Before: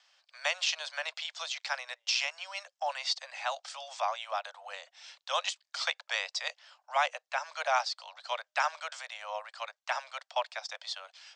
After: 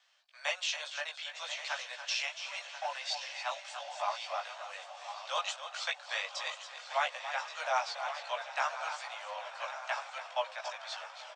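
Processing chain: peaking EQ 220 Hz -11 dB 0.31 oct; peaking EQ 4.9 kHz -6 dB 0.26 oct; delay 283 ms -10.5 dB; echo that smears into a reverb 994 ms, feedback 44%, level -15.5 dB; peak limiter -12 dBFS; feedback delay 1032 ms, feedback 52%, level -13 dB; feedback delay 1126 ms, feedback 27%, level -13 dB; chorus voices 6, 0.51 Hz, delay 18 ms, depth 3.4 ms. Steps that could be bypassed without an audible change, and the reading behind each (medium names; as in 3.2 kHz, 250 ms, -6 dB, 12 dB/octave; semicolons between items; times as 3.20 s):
peaking EQ 220 Hz: input has nothing below 450 Hz; peak limiter -12 dBFS: peak at its input -15.0 dBFS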